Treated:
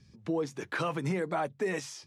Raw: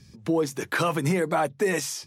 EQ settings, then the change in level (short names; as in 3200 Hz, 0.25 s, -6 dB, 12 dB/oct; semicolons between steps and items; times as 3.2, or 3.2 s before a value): air absorption 65 m; -7.0 dB